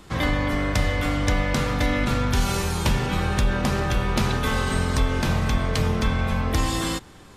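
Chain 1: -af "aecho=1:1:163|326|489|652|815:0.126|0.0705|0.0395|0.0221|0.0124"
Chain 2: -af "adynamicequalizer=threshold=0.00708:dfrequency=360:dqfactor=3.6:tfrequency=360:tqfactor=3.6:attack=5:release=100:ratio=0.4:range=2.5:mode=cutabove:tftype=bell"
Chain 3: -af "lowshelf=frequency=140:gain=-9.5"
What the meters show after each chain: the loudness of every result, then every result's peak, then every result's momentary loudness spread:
−23.5, −24.0, −26.0 LKFS; −9.5, −9.5, −10.5 dBFS; 1, 1, 2 LU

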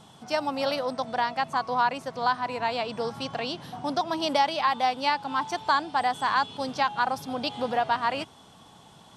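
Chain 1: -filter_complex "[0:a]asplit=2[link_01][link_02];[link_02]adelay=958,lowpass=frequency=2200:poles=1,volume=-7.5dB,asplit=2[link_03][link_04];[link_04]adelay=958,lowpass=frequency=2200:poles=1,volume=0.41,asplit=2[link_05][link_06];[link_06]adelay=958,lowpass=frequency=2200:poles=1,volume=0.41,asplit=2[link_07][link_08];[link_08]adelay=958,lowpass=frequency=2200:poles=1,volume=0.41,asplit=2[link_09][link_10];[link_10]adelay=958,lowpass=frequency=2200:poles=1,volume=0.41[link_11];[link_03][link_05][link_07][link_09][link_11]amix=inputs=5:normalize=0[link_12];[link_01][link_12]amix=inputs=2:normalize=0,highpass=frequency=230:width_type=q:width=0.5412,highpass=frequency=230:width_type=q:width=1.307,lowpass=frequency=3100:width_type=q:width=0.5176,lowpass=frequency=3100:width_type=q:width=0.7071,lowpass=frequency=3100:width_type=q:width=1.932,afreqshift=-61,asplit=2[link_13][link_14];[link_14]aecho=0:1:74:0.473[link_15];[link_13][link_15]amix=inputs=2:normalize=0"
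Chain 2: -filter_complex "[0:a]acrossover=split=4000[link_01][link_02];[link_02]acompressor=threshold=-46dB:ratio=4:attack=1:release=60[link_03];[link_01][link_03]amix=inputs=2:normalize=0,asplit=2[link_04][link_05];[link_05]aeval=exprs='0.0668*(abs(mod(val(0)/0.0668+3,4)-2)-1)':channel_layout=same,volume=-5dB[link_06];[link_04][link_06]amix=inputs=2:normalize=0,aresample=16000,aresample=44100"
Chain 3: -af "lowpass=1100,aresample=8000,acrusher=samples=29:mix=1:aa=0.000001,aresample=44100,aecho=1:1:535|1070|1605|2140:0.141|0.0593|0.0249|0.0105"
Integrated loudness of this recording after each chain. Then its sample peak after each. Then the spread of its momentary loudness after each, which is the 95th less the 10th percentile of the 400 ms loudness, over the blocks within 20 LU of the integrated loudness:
−27.0, −25.5, −33.0 LKFS; −11.0, −10.5, −15.0 dBFS; 7, 6, 10 LU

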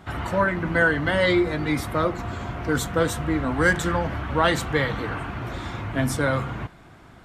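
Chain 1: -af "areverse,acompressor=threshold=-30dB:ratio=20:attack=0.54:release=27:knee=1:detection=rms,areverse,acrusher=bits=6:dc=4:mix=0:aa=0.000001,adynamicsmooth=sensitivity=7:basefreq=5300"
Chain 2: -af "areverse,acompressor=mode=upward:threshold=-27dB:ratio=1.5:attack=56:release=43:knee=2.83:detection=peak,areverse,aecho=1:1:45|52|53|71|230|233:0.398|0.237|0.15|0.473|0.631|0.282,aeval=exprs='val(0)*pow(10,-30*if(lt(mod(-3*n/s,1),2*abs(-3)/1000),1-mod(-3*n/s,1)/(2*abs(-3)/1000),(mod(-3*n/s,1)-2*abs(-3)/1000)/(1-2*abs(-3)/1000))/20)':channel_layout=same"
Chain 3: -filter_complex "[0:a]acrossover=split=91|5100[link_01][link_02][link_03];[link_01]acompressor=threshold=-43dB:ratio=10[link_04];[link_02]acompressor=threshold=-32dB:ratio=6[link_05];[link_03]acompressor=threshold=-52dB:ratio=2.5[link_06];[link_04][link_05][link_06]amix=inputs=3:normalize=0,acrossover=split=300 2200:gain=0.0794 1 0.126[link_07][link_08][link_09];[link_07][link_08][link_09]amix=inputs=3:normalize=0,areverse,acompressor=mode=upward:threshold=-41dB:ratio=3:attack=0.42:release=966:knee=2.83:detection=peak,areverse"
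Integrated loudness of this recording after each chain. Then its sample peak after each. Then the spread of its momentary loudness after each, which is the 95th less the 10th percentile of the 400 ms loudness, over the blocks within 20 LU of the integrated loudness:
−35.5, −29.5, −38.5 LKFS; −24.0, −7.5, −23.0 dBFS; 2, 10, 4 LU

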